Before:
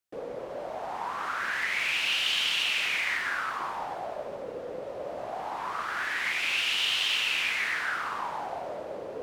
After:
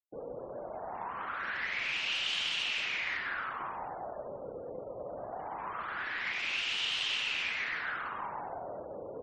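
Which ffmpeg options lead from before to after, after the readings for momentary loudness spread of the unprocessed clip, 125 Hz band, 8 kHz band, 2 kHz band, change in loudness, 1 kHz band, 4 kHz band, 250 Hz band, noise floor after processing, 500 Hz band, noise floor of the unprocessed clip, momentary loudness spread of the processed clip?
13 LU, -1.5 dB, -9.0 dB, -6.0 dB, -6.0 dB, -5.5 dB, -6.0 dB, -3.5 dB, -44 dBFS, -5.0 dB, -39 dBFS, 12 LU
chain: -filter_complex "[0:a]lowshelf=f=190:g=6.5,asplit=2[s0][s1];[s1]adelay=126,lowpass=f=1600:p=1,volume=0.299,asplit=2[s2][s3];[s3]adelay=126,lowpass=f=1600:p=1,volume=0.26,asplit=2[s4][s5];[s5]adelay=126,lowpass=f=1600:p=1,volume=0.26[s6];[s2][s4][s6]amix=inputs=3:normalize=0[s7];[s0][s7]amix=inputs=2:normalize=0,afftfilt=real='re*gte(hypot(re,im),0.00891)':imag='im*gte(hypot(re,im),0.00891)':win_size=1024:overlap=0.75,aeval=exprs='0.2*(cos(1*acos(clip(val(0)/0.2,-1,1)))-cos(1*PI/2))+0.00282*(cos(4*acos(clip(val(0)/0.2,-1,1)))-cos(4*PI/2))':c=same,volume=0.501"

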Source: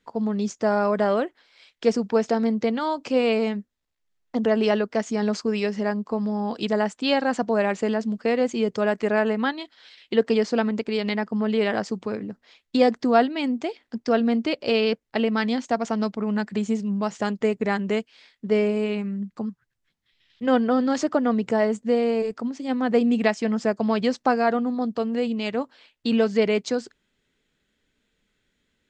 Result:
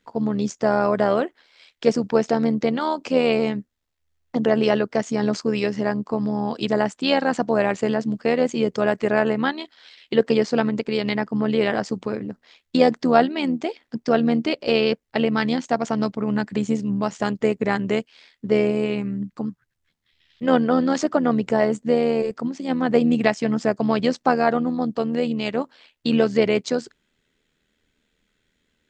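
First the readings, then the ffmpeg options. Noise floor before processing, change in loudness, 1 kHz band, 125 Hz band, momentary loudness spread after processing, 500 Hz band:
-75 dBFS, +2.0 dB, +2.0 dB, no reading, 8 LU, +2.0 dB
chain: -af "tremolo=f=79:d=0.571,volume=1.68"

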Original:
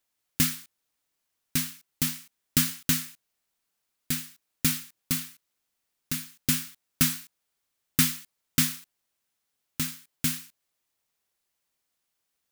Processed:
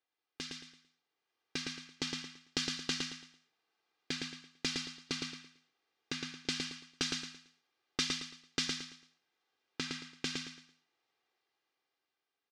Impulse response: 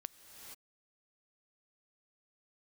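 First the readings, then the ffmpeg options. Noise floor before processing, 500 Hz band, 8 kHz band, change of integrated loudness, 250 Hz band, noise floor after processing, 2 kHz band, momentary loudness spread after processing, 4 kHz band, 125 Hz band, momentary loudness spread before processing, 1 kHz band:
-81 dBFS, +3.0 dB, -13.5 dB, -11.0 dB, -10.5 dB, under -85 dBFS, -5.0 dB, 13 LU, -3.0 dB, -15.5 dB, 16 LU, -5.0 dB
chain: -filter_complex "[0:a]highpass=210,highshelf=f=3500:g=-7.5[s0];[1:a]atrim=start_sample=2205,atrim=end_sample=4410[s1];[s0][s1]afir=irnorm=-1:irlink=0,acrossover=split=3600[s2][s3];[s2]acompressor=threshold=0.00562:ratio=6[s4];[s4][s3]amix=inputs=2:normalize=0,lowpass=f=5200:w=0.5412,lowpass=f=5200:w=1.3066,aecho=1:1:2.5:0.55,aecho=1:1:112|224|336|448:0.631|0.189|0.0568|0.017,dynaudnorm=f=130:g=21:m=2.51"

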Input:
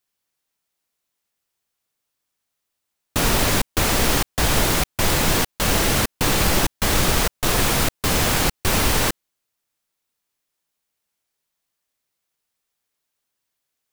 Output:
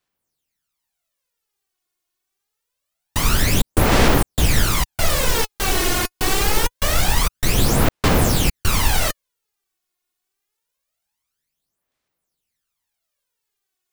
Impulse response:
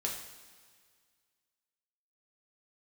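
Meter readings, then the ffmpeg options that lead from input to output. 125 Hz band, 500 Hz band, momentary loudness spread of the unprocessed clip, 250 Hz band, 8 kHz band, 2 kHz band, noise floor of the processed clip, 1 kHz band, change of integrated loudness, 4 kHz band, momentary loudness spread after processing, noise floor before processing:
+3.0 dB, +1.0 dB, 2 LU, +1.0 dB, -1.0 dB, -0.5 dB, -80 dBFS, +0.5 dB, +0.5 dB, -0.5 dB, 4 LU, -80 dBFS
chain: -af "aphaser=in_gain=1:out_gain=1:delay=2.8:decay=0.66:speed=0.25:type=sinusoidal,volume=0.708"

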